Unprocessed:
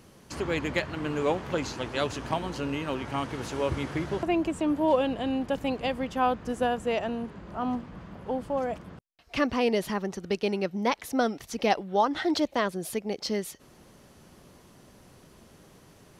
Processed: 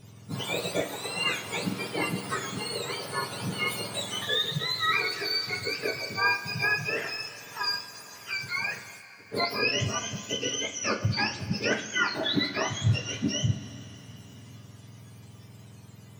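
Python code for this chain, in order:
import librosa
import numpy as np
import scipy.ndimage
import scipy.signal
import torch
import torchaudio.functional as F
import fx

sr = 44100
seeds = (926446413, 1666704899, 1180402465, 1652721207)

y = fx.octave_mirror(x, sr, pivot_hz=1100.0)
y = fx.rev_double_slope(y, sr, seeds[0], early_s=0.33, late_s=4.2, knee_db=-19, drr_db=2.0)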